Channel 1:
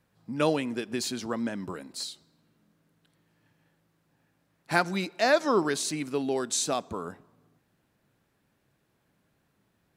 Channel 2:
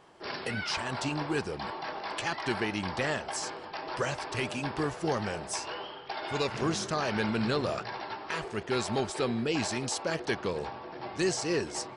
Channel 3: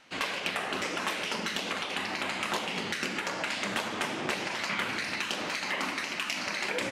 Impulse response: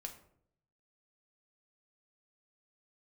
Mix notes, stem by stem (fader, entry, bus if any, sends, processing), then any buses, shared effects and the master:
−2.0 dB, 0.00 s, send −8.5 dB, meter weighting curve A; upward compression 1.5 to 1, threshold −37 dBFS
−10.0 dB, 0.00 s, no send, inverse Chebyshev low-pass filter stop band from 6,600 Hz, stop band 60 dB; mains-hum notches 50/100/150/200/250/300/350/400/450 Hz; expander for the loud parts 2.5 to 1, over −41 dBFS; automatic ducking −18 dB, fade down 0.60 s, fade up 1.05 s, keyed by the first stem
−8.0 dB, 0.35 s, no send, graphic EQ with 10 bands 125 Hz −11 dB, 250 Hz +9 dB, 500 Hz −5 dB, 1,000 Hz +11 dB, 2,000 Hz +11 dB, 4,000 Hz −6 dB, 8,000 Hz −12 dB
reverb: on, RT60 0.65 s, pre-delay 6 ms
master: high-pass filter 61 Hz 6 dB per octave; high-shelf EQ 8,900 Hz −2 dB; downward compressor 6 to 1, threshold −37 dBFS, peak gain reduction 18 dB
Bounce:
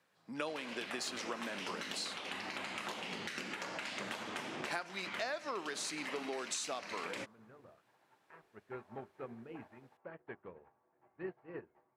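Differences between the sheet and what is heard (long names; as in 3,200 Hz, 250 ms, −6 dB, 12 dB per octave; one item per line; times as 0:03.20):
stem 1: missing upward compression 1.5 to 1, threshold −37 dBFS
stem 3: missing graphic EQ with 10 bands 125 Hz −11 dB, 250 Hz +9 dB, 500 Hz −5 dB, 1,000 Hz +11 dB, 2,000 Hz +11 dB, 4,000 Hz −6 dB, 8,000 Hz −12 dB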